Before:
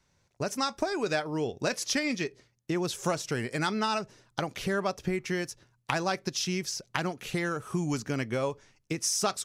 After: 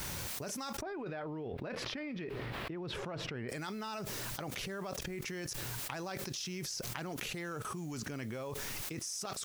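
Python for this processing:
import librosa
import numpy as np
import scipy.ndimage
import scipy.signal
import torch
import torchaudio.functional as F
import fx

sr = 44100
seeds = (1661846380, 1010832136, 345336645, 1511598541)

y = fx.level_steps(x, sr, step_db=24)
y = fx.quant_dither(y, sr, seeds[0], bits=12, dither='triangular')
y = fx.air_absorb(y, sr, metres=450.0, at=(0.8, 3.48), fade=0.02)
y = fx.env_flatten(y, sr, amount_pct=100)
y = y * 10.0 ** (5.0 / 20.0)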